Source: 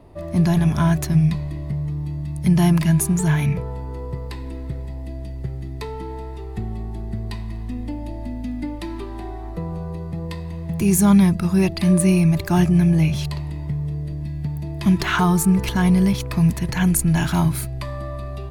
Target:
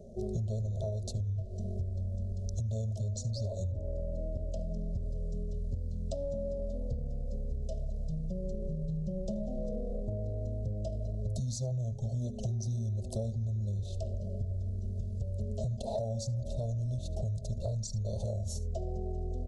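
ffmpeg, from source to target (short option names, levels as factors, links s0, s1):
-af "asuperstop=centerf=2600:order=12:qfactor=0.55,aecho=1:1:76:0.106,asetrate=29433,aresample=44100,atempo=1.49831,bandreject=f=50:t=h:w=6,bandreject=f=100:t=h:w=6,bandreject=f=150:t=h:w=6,bandreject=f=200:t=h:w=6,bandreject=f=250:t=h:w=6,bandreject=f=300:t=h:w=6,bandreject=f=350:t=h:w=6,bandreject=f=400:t=h:w=6,alimiter=limit=0.126:level=0:latency=1:release=350,superequalizer=6b=0.251:8b=2.24:12b=2.24,acompressor=threshold=0.0282:ratio=8,asetrate=41895,aresample=44100,adynamicequalizer=threshold=0.00112:dfrequency=3000:dqfactor=0.7:tfrequency=3000:tqfactor=0.7:attack=5:release=100:ratio=0.375:range=2:mode=cutabove:tftype=highshelf"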